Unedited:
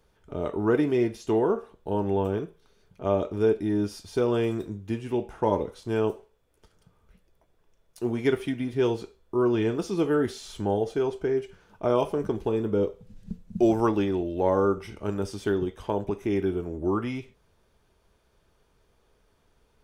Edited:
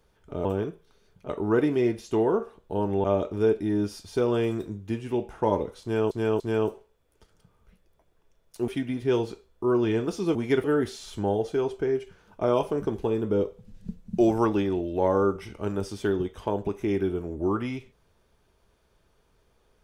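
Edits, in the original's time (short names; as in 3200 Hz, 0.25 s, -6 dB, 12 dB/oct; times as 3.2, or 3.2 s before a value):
2.2–3.04 move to 0.45
5.82–6.11 loop, 3 plays
8.1–8.39 move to 10.06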